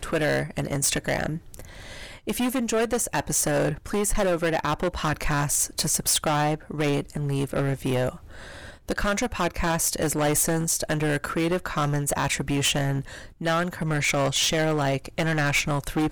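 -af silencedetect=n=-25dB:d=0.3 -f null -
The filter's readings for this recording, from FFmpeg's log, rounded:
silence_start: 1.59
silence_end: 2.27 | silence_duration: 0.68
silence_start: 8.09
silence_end: 8.89 | silence_duration: 0.80
silence_start: 13.00
silence_end: 13.41 | silence_duration: 0.41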